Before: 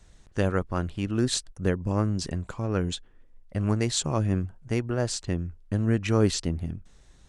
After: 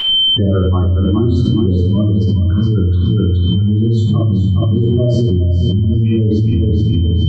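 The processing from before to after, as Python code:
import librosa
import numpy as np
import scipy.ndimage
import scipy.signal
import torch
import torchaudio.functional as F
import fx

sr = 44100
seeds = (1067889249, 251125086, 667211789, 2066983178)

p1 = fx.noise_reduce_blind(x, sr, reduce_db=7)
p2 = scipy.signal.sosfilt(scipy.signal.butter(4, 67.0, 'highpass', fs=sr, output='sos'), p1)
p3 = fx.spec_gate(p2, sr, threshold_db=-10, keep='strong')
p4 = fx.low_shelf(p3, sr, hz=140.0, db=11.0)
p5 = fx.rider(p4, sr, range_db=4, speed_s=0.5)
p6 = p4 + (p5 * 10.0 ** (3.0 / 20.0))
p7 = fx.comb_fb(p6, sr, f0_hz=110.0, decay_s=0.55, harmonics='all', damping=0.0, mix_pct=30)
p8 = np.sign(p7) * np.maximum(np.abs(p7) - 10.0 ** (-49.5 / 20.0), 0.0)
p9 = p8 + 10.0 ** (-33.0 / 20.0) * np.sin(2.0 * np.pi * 3100.0 * np.arange(len(p8)) / sr)
p10 = fx.spacing_loss(p9, sr, db_at_10k=32)
p11 = fx.echo_feedback(p10, sr, ms=418, feedback_pct=20, wet_db=-6.0)
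p12 = fx.room_shoebox(p11, sr, seeds[0], volume_m3=590.0, walls='furnished', distance_m=9.6)
p13 = fx.env_flatten(p12, sr, amount_pct=100)
y = p13 * 10.0 ** (-16.5 / 20.0)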